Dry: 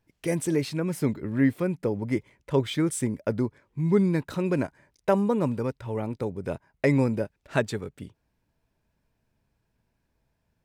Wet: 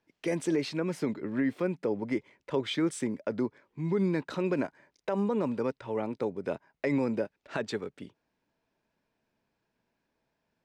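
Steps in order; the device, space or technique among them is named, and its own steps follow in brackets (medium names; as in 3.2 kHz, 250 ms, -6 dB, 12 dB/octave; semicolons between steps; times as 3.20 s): DJ mixer with the lows and highs turned down (three-band isolator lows -17 dB, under 190 Hz, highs -17 dB, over 6.7 kHz; peak limiter -19.5 dBFS, peak gain reduction 11 dB)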